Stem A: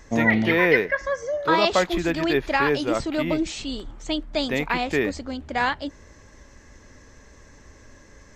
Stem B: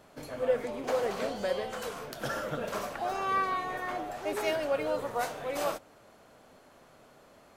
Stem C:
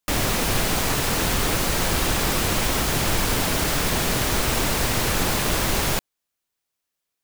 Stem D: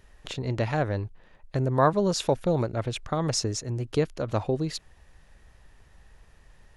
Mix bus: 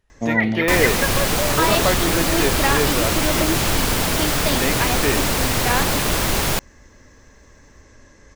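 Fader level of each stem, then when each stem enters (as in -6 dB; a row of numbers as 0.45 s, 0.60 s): +0.5 dB, -15.0 dB, +2.5 dB, -12.0 dB; 0.10 s, 0.20 s, 0.60 s, 0.00 s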